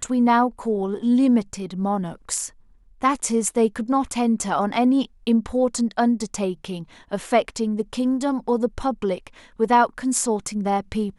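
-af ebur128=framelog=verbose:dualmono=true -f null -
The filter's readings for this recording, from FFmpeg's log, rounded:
Integrated loudness:
  I:         -19.3 LUFS
  Threshold: -29.5 LUFS
Loudness range:
  LRA:         2.4 LU
  Threshold: -39.8 LUFS
  LRA low:   -21.0 LUFS
  LRA high:  -18.6 LUFS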